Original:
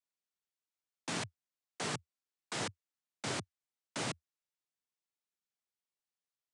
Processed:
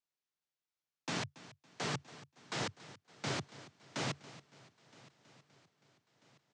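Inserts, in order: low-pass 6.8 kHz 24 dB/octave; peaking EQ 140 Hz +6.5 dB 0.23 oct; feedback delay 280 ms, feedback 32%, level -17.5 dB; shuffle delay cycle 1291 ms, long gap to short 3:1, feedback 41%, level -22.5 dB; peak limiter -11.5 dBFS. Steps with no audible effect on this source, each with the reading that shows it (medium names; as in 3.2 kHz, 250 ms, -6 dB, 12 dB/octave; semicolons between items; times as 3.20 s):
peak limiter -11.5 dBFS: peak at its input -24.5 dBFS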